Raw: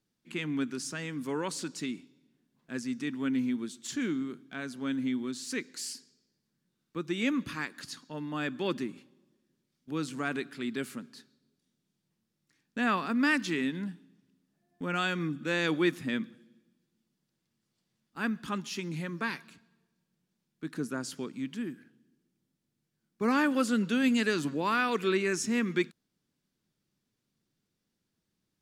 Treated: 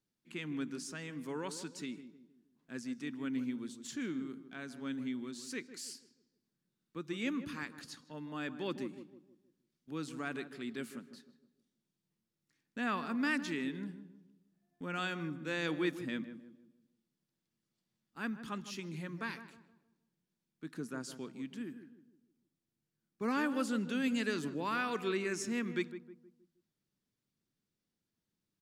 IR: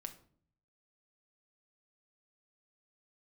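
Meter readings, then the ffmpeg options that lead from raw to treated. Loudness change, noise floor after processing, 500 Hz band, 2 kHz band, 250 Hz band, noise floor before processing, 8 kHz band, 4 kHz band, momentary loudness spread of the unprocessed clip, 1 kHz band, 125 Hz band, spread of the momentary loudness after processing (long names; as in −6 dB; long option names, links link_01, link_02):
−7.0 dB, below −85 dBFS, −6.5 dB, −7.0 dB, −6.5 dB, −82 dBFS, −7.0 dB, −7.0 dB, 13 LU, −7.0 dB, −6.5 dB, 15 LU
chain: -filter_complex "[0:a]asplit=2[link_01][link_02];[link_02]adelay=157,lowpass=frequency=1000:poles=1,volume=-10dB,asplit=2[link_03][link_04];[link_04]adelay=157,lowpass=frequency=1000:poles=1,volume=0.43,asplit=2[link_05][link_06];[link_06]adelay=157,lowpass=frequency=1000:poles=1,volume=0.43,asplit=2[link_07][link_08];[link_08]adelay=157,lowpass=frequency=1000:poles=1,volume=0.43,asplit=2[link_09][link_10];[link_10]adelay=157,lowpass=frequency=1000:poles=1,volume=0.43[link_11];[link_01][link_03][link_05][link_07][link_09][link_11]amix=inputs=6:normalize=0,volume=-7dB"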